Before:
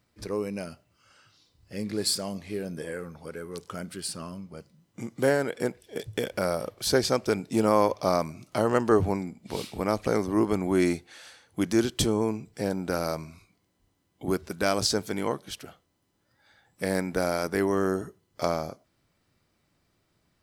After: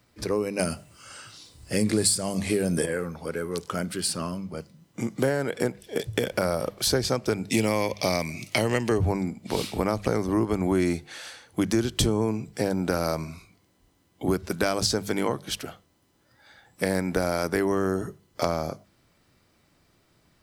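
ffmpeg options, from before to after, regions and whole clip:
-filter_complex "[0:a]asettb=1/sr,asplit=3[s0][s1][s2];[s0]atrim=end=0.594[s3];[s1]atrim=start=0.59:end=2.86,asetpts=PTS-STARTPTS,afade=t=in:d=0.004:c=qsin,afade=t=out:st=2.266:d=0.004:c=qsin,equalizer=f=8700:t=o:w=0.61:g=11.5,acontrast=58[s4];[s2]atrim=start=2.856[s5];[s3][s4]acrossfade=d=0.004:c1=hsin:c2=qsin[s6];[s6][s5]acrossfade=d=0.004:c1=qsin:c2=hsin,asettb=1/sr,asplit=3[s7][s8][s9];[s7]atrim=end=7.504[s10];[s8]atrim=start=7.5:end=8.98,asetpts=PTS-STARTPTS,afade=t=in:d=0.004:c=qsin,afade=t=out:st=1.476:d=0.004:c=qsin,highpass=57,highshelf=f=1700:t=q:w=3:g=7[s11];[s9]atrim=start=8.976[s12];[s10][s11]acrossfade=d=0.004:c1=hsin:c2=qsin[s13];[s13][s12]acrossfade=d=0.004:c1=qsin:c2=hsin,bandreject=f=50:t=h:w=6,bandreject=f=100:t=h:w=6,bandreject=f=150:t=h:w=6,bandreject=f=200:t=h:w=6,acrossover=split=130[s14][s15];[s15]acompressor=threshold=0.0355:ratio=6[s16];[s14][s16]amix=inputs=2:normalize=0,volume=2.37"

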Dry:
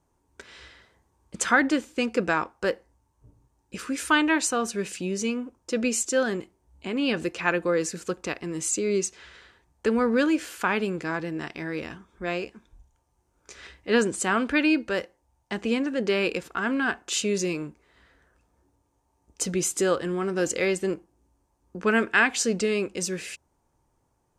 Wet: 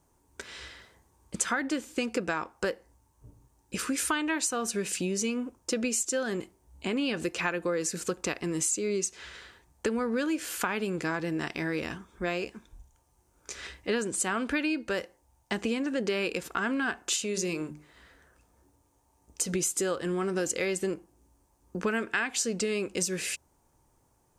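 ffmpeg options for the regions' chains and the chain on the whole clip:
-filter_complex "[0:a]asettb=1/sr,asplit=3[s0][s1][s2];[s0]atrim=end=17.164[s3];[s1]atrim=start=17.16:end=19.53,asetpts=PTS-STARTPTS,afade=t=in:d=0.004:c=qsin,afade=t=out:st=2.366:d=0.004:c=qsin,bandreject=f=50:t=h:w=6,bandreject=f=100:t=h:w=6,bandreject=f=150:t=h:w=6,bandreject=f=200:t=h:w=6,bandreject=f=250:t=h:w=6,bandreject=f=300:t=h:w=6,bandreject=f=350:t=h:w=6,bandreject=f=400:t=h:w=6,acompressor=threshold=0.02:ratio=1.5:attack=3.2:release=140:knee=1:detection=peak[s4];[s2]atrim=start=19.526[s5];[s3][s4]acrossfade=d=0.004:c1=hsin:c2=qsin[s6];[s6][s5]acrossfade=d=0.004:c1=qsin:c2=hsin,highshelf=f=7000:g=9,acompressor=threshold=0.0355:ratio=6,volume=1.33"

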